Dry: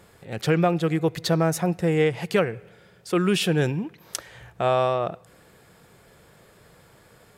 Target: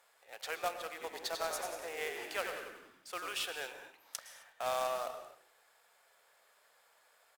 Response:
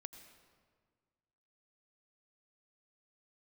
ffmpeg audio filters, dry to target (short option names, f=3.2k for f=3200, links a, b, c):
-filter_complex "[0:a]highpass=f=630:w=0.5412,highpass=f=630:w=1.3066,flanger=delay=9.6:depth=8.3:regen=-90:speed=2:shape=triangular,acrusher=bits=2:mode=log:mix=0:aa=0.000001,asplit=3[a][b][c];[a]afade=t=out:st=0.99:d=0.02[d];[b]asplit=7[e][f][g][h][i][j][k];[f]adelay=93,afreqshift=-51,volume=-6dB[l];[g]adelay=186,afreqshift=-102,volume=-12dB[m];[h]adelay=279,afreqshift=-153,volume=-18dB[n];[i]adelay=372,afreqshift=-204,volume=-24.1dB[o];[j]adelay=465,afreqshift=-255,volume=-30.1dB[p];[k]adelay=558,afreqshift=-306,volume=-36.1dB[q];[e][l][m][n][o][p][q]amix=inputs=7:normalize=0,afade=t=in:st=0.99:d=0.02,afade=t=out:st=3.31:d=0.02[r];[c]afade=t=in:st=3.31:d=0.02[s];[d][r][s]amix=inputs=3:normalize=0[t];[1:a]atrim=start_sample=2205,afade=t=out:st=0.25:d=0.01,atrim=end_sample=11466,asetrate=32634,aresample=44100[u];[t][u]afir=irnorm=-1:irlink=0,volume=-2.5dB"